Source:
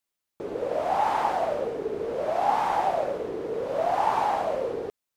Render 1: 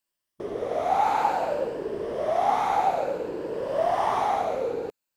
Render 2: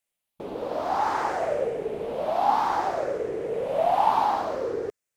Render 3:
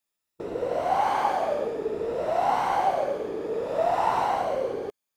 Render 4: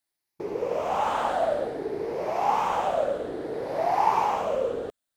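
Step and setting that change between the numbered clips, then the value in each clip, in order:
moving spectral ripple, ripples per octave: 1.3, 0.5, 2, 0.79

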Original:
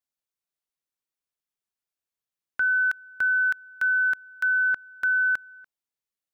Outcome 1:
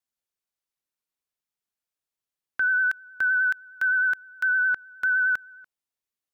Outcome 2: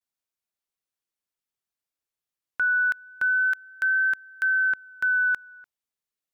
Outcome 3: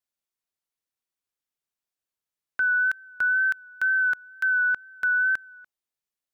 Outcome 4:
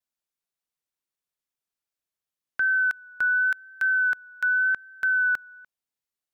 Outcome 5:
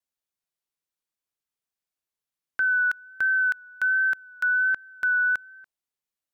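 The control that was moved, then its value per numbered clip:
vibrato, rate: 9.7, 0.3, 2.1, 0.87, 1.3 Hz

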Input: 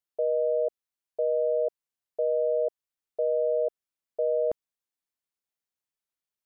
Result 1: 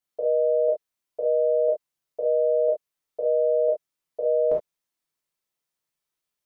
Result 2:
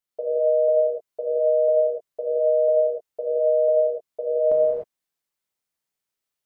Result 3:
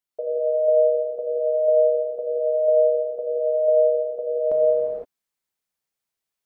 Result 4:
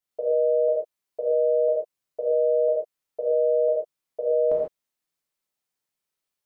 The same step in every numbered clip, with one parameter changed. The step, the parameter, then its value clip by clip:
non-linear reverb, gate: 90, 330, 540, 170 ms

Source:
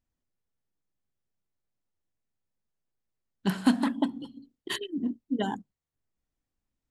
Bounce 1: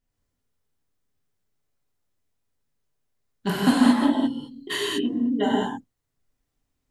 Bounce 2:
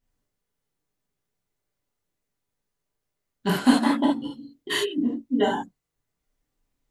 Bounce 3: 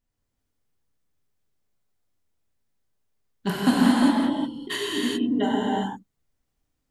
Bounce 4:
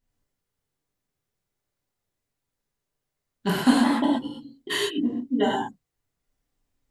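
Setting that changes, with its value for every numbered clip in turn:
non-linear reverb, gate: 0.24, 0.1, 0.43, 0.15 s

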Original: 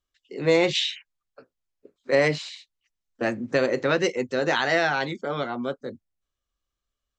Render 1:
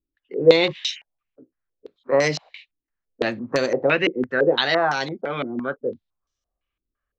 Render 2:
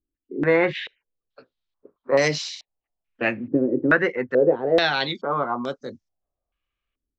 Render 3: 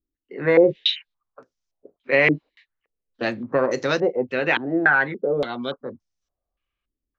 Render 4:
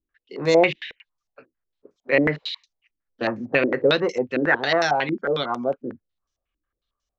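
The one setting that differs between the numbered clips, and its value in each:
stepped low-pass, rate: 5.9, 2.3, 3.5, 11 Hz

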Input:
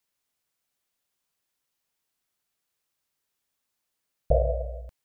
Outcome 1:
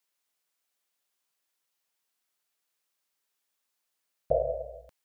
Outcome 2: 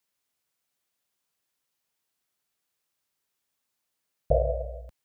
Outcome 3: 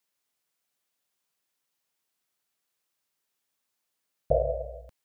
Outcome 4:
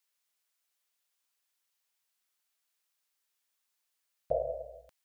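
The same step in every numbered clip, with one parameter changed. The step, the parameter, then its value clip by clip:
HPF, cutoff: 420, 59, 150, 1100 Hz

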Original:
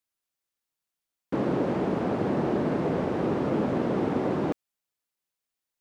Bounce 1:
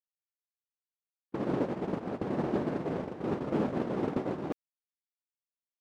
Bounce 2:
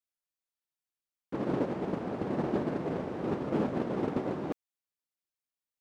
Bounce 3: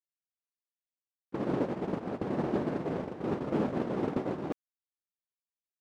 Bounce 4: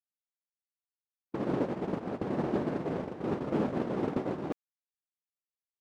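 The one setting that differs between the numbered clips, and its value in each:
gate, range: -40, -9, -26, -54 dB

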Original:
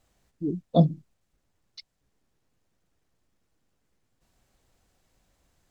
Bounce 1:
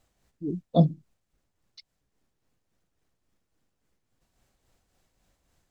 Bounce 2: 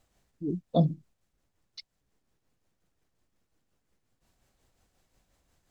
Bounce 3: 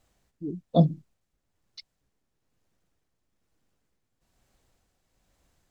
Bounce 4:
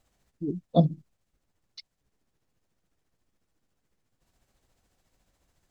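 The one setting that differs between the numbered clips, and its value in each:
tremolo, rate: 3.6, 5.6, 1.1, 14 Hz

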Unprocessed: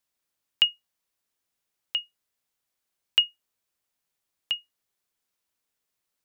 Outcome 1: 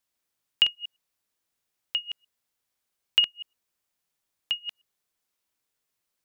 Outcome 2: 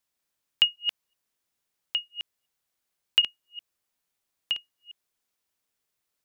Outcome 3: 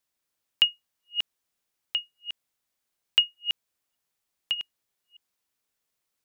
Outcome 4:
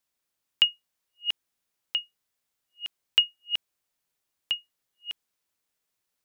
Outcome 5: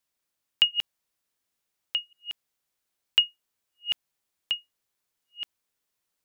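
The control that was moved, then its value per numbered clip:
reverse delay, time: 0.107, 0.189, 0.304, 0.481, 0.71 s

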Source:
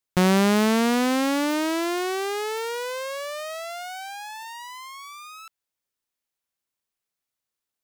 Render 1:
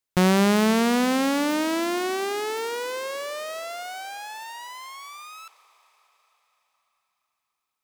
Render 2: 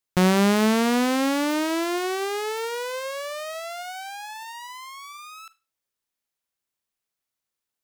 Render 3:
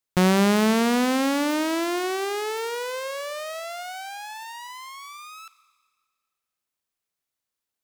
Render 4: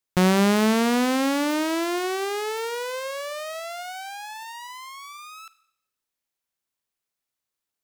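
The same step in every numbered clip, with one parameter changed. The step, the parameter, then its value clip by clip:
Schroeder reverb, RT60: 4.6, 0.3, 1.7, 0.75 s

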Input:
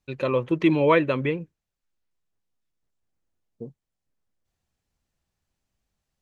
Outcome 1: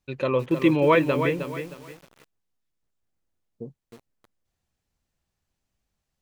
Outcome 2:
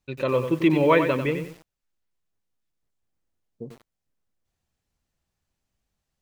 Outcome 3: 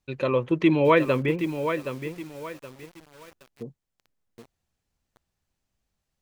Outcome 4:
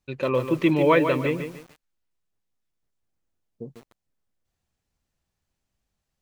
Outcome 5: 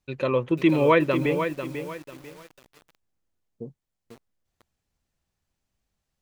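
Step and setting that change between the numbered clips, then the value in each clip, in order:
lo-fi delay, time: 312, 94, 771, 147, 494 ms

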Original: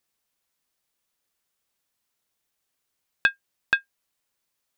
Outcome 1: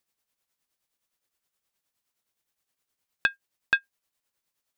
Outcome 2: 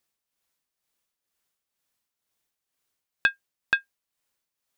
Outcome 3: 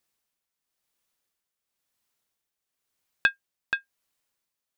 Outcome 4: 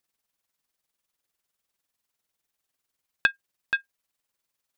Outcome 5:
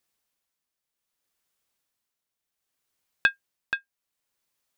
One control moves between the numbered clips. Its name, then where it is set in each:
tremolo, rate: 9.6, 2.1, 0.97, 20, 0.65 Hz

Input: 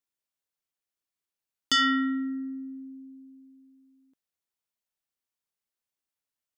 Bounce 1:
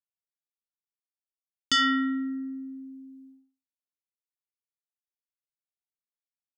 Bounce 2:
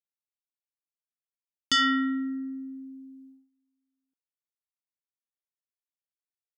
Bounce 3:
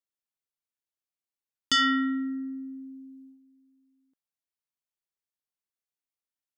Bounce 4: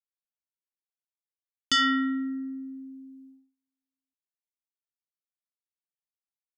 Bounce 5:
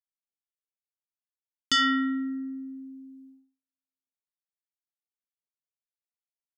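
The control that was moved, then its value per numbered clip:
gate, range: -60, -21, -7, -33, -46 dB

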